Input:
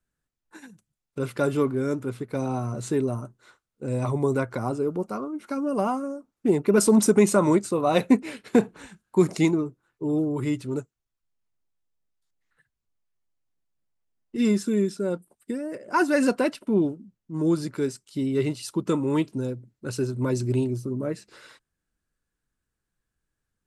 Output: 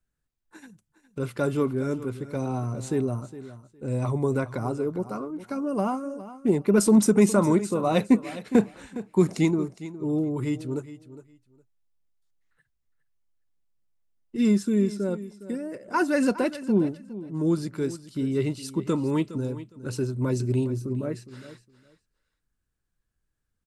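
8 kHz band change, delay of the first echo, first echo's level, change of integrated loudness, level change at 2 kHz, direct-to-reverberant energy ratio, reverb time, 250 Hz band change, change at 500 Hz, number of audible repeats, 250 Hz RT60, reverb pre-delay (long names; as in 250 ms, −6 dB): −2.5 dB, 411 ms, −15.0 dB, −1.0 dB, −2.5 dB, no reverb audible, no reverb audible, 0.0 dB, −2.0 dB, 2, no reverb audible, no reverb audible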